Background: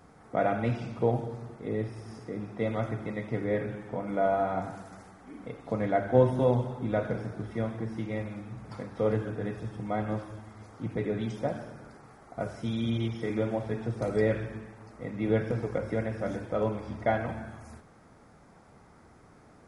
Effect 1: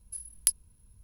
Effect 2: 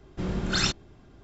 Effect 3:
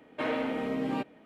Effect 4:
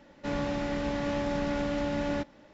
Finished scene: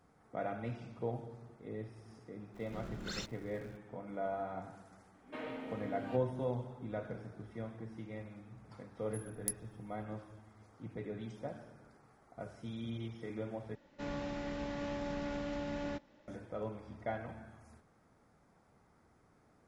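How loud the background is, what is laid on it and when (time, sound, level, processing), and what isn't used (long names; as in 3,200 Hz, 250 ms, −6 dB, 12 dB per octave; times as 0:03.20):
background −12 dB
0:02.54: mix in 2 −18 dB + converter with a step at zero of −37.5 dBFS
0:05.14: mix in 3 −13 dB
0:09.01: mix in 1 −11 dB + parametric band 3,100 Hz −13 dB 1.4 octaves
0:13.75: overwrite with 4 −9 dB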